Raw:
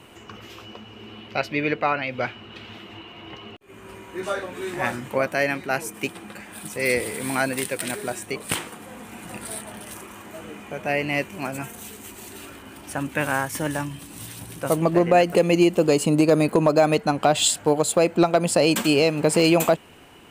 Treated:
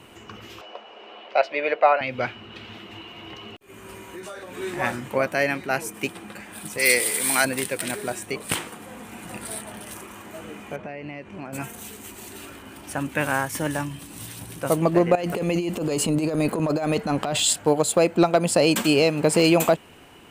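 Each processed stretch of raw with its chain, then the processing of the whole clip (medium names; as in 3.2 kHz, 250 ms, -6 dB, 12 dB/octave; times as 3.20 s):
0.61–2.01 s: resonant high-pass 610 Hz, resonance Q 3 + distance through air 98 m
2.91–4.56 s: treble shelf 5 kHz +7.5 dB + compression, threshold -34 dBFS
6.78–7.45 s: high-pass 350 Hz 6 dB/octave + treble shelf 2.5 kHz +12 dB + band-stop 2.6 kHz, Q 26
10.76–11.53 s: compression, threshold -29 dBFS + tape spacing loss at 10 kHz 22 dB
15.15–17.53 s: compressor with a negative ratio -20 dBFS, ratio -0.5 + transient shaper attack -10 dB, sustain +2 dB
whole clip: none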